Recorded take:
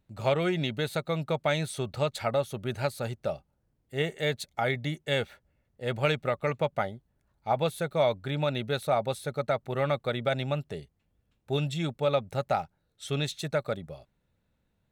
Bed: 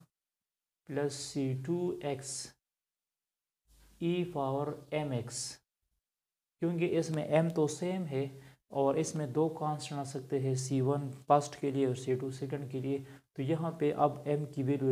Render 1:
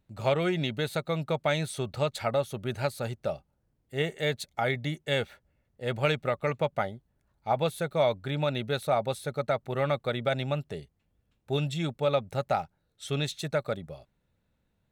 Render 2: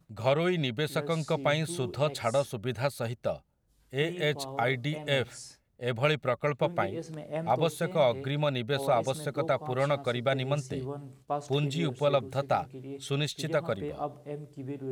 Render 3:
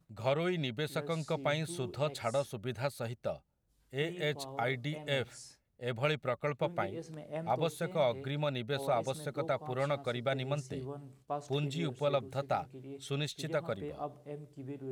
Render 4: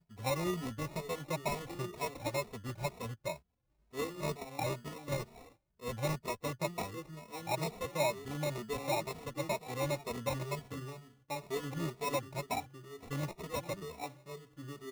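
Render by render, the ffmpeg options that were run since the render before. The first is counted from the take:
-af anull
-filter_complex "[1:a]volume=0.473[s0];[0:a][s0]amix=inputs=2:normalize=0"
-af "volume=0.531"
-filter_complex "[0:a]acrusher=samples=28:mix=1:aa=0.000001,asplit=2[s0][s1];[s1]adelay=2.8,afreqshift=2.1[s2];[s0][s2]amix=inputs=2:normalize=1"

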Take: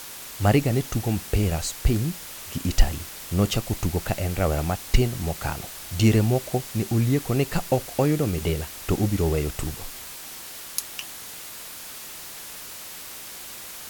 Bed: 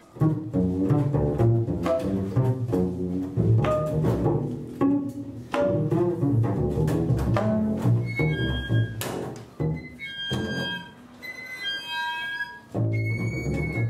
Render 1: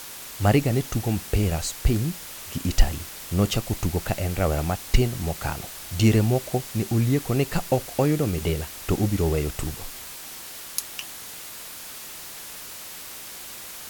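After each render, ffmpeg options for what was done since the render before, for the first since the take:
-af anull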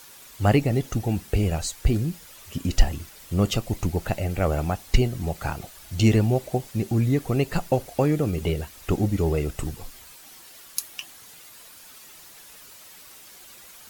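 -af "afftdn=nr=10:nf=-39"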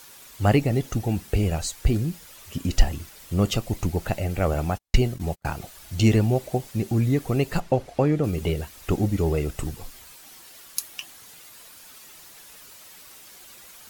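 -filter_complex "[0:a]asettb=1/sr,asplit=3[s0][s1][s2];[s0]atrim=end=4.544[s3];[s1]atrim=start=4.54:end=5.46,asetpts=PTS-STARTPTS,afade=t=in:d=0.004:c=qsin,afade=t=out:st=0.916:d=0.004:c=qsin,agate=range=0.00794:threshold=0.0251:ratio=16:release=100:detection=peak[s4];[s2]atrim=start=5.456[s5];[s3][s4]acrossfade=d=0.004:c1=hsin:c2=qsin[s6];[s6][s5]acrossfade=d=0.004:c1=qsin:c2=hsin,asettb=1/sr,asplit=3[s7][s8][s9];[s7]atrim=end=7.604[s10];[s8]atrim=start=7.6:end=8.24,asetpts=PTS-STARTPTS,afade=t=in:d=0.004:c=qsin,afade=t=out:st=0.636:d=0.004:c=qsin,aemphasis=mode=reproduction:type=50fm[s11];[s9]atrim=start=8.236[s12];[s10][s11]acrossfade=d=0.004:c1=hsin:c2=qsin[s13];[s13][s12]acrossfade=d=0.004:c1=qsin:c2=hsin"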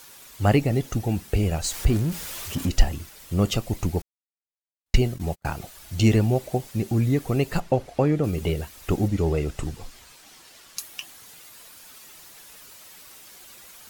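-filter_complex "[0:a]asettb=1/sr,asplit=3[s0][s1][s2];[s0]atrim=end=1.644[s3];[s1]atrim=start=1.64:end=2.69,asetpts=PTS-STARTPTS,afade=t=in:d=0.004:c=qsin,afade=t=out:st=1.046:d=0.004:c=qsin,aeval=exprs='val(0)+0.5*0.0266*sgn(val(0))':c=same[s4];[s2]atrim=start=2.686[s5];[s3][s4]acrossfade=d=0.004:c1=hsin:c2=qsin[s6];[s6][s5]acrossfade=d=0.004:c1=qsin:c2=hsin,asettb=1/sr,asplit=3[s7][s8][s9];[s7]atrim=end=9.084[s10];[s8]atrim=start=9.08:end=10.79,asetpts=PTS-STARTPTS,afade=t=in:d=0.004:c=qsin,afade=t=out:st=1.706:d=0.004:c=qsin,acrossover=split=8600[s11][s12];[s12]acompressor=threshold=0.00158:ratio=4:attack=1:release=60[s13];[s11][s13]amix=inputs=2:normalize=0[s14];[s9]atrim=start=10.786[s15];[s10][s14]acrossfade=d=0.004:c1=hsin:c2=qsin[s16];[s16][s15]acrossfade=d=0.004:c1=qsin:c2=hsin,asplit=3[s17][s18][s19];[s17]atrim=end=4.02,asetpts=PTS-STARTPTS,afade=t=out:st=4.016:d=0.004:c=hsin[s20];[s18]atrim=start=4.02:end=4.86,asetpts=PTS-STARTPTS,volume=0[s21];[s19]atrim=start=4.86,asetpts=PTS-STARTPTS,afade=t=in:d=0.004:c=hsin[s22];[s20][s21][s22]concat=n=3:v=0:a=1"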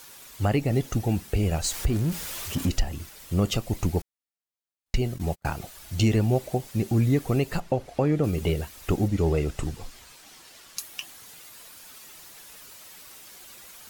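-af "alimiter=limit=0.211:level=0:latency=1:release=224"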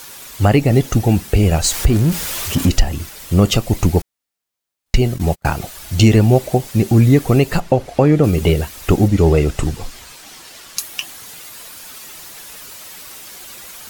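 -af "volume=3.55"

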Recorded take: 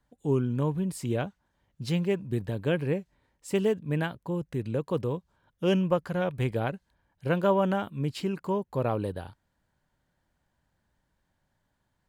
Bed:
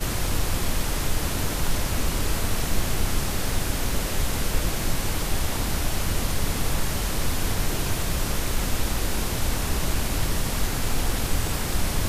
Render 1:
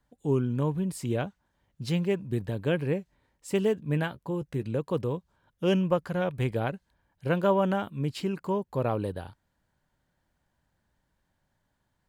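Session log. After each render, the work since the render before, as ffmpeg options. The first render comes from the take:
-filter_complex "[0:a]asettb=1/sr,asplit=3[s0][s1][s2];[s0]atrim=end=3.734[s3];[s1]atrim=start=3.73:end=4.66,asetpts=PTS-STARTPTS,afade=t=in:d=0.004:c=qsin,afade=t=out:st=0.926:d=0.004:c=qsin,asplit=2[s4][s5];[s5]adelay=14,volume=0.251[s6];[s4][s6]amix=inputs=2:normalize=0,atrim=end_sample=41013[s7];[s2]atrim=start=4.656[s8];[s3][s7]acrossfade=d=0.004:c1=hsin:c2=qsin[s9];[s9][s8]acrossfade=d=0.004:c1=qsin:c2=hsin"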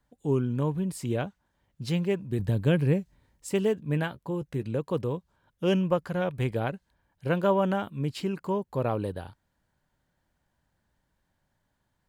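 -filter_complex "[0:a]asettb=1/sr,asplit=3[s0][s1][s2];[s0]atrim=end=2.394[s3];[s1]atrim=start=2.39:end=3.49,asetpts=PTS-STARTPTS,afade=t=in:d=0.004:c=qsin,afade=t=out:st=1.096:d=0.004:c=qsin,bass=f=250:g=8,treble=f=4000:g=5[s4];[s2]atrim=start=3.486[s5];[s3][s4]acrossfade=d=0.004:c1=hsin:c2=qsin[s6];[s6][s5]acrossfade=d=0.004:c1=qsin:c2=hsin"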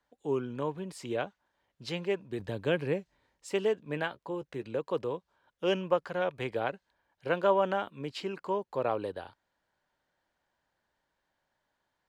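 -filter_complex "[0:a]acrossover=split=330 6600:gain=0.178 1 0.2[s0][s1][s2];[s0][s1][s2]amix=inputs=3:normalize=0"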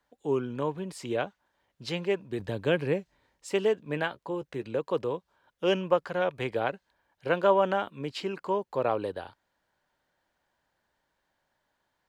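-af "volume=1.41"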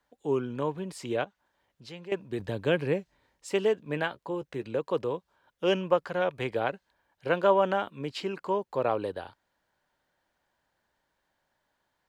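-filter_complex "[0:a]asettb=1/sr,asplit=3[s0][s1][s2];[s0]atrim=end=1.244[s3];[s1]atrim=start=1.24:end=2.12,asetpts=PTS-STARTPTS,afade=t=in:d=0.004:c=qsin,afade=t=out:st=0.876:d=0.004:c=qsin,acompressor=threshold=0.001:ratio=1.5:attack=3.2:release=140:knee=1:detection=peak[s4];[s2]atrim=start=2.116[s5];[s3][s4]acrossfade=d=0.004:c1=hsin:c2=qsin[s6];[s6][s5]acrossfade=d=0.004:c1=qsin:c2=hsin"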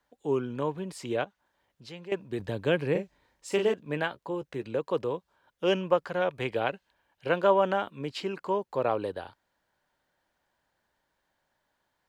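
-filter_complex "[0:a]asettb=1/sr,asplit=3[s0][s1][s2];[s0]atrim=end=2.914[s3];[s1]atrim=start=2.91:end=3.74,asetpts=PTS-STARTPTS,afade=t=in:d=0.004:c=qsin,afade=t=out:st=0.826:d=0.004:c=qsin,asplit=2[s4][s5];[s5]adelay=40,volume=0.531[s6];[s4][s6]amix=inputs=2:normalize=0,atrim=end_sample=36603[s7];[s2]atrim=start=3.736[s8];[s3][s7]acrossfade=d=0.004:c1=hsin:c2=qsin[s9];[s9][s8]acrossfade=d=0.004:c1=qsin:c2=hsin,asettb=1/sr,asplit=3[s10][s11][s12];[s10]atrim=end=6.454[s13];[s11]atrim=start=6.45:end=7.31,asetpts=PTS-STARTPTS,afade=t=in:d=0.004:c=qsin,afade=t=out:st=0.856:d=0.004:c=qsin,equalizer=f=2800:w=2.9:g=6[s14];[s12]atrim=start=7.306[s15];[s13][s14]acrossfade=d=0.004:c1=hsin:c2=qsin[s16];[s16][s15]acrossfade=d=0.004:c1=qsin:c2=hsin"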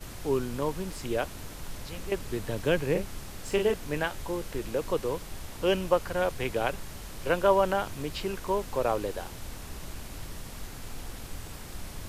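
-filter_complex "[1:a]volume=0.168[s0];[0:a][s0]amix=inputs=2:normalize=0"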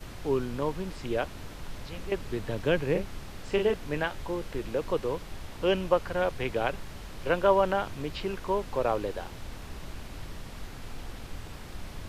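-filter_complex "[0:a]acrossover=split=5000[s0][s1];[s1]acompressor=threshold=0.00126:ratio=4:attack=1:release=60[s2];[s0][s2]amix=inputs=2:normalize=0"

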